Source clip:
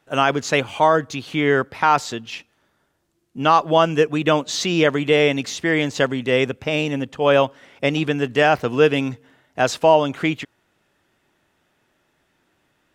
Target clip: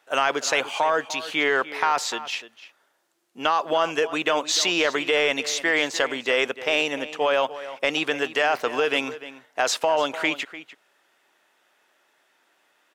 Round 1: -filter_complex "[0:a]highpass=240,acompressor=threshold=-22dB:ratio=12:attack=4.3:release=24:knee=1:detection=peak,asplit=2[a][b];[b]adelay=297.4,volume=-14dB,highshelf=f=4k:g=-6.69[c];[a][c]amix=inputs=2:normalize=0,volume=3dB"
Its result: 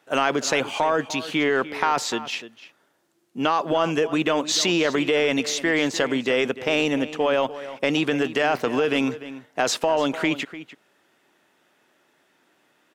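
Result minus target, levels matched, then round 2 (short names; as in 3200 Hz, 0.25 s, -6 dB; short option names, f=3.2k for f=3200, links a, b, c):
250 Hz band +7.5 dB
-filter_complex "[0:a]highpass=560,acompressor=threshold=-22dB:ratio=12:attack=4.3:release=24:knee=1:detection=peak,asplit=2[a][b];[b]adelay=297.4,volume=-14dB,highshelf=f=4k:g=-6.69[c];[a][c]amix=inputs=2:normalize=0,volume=3dB"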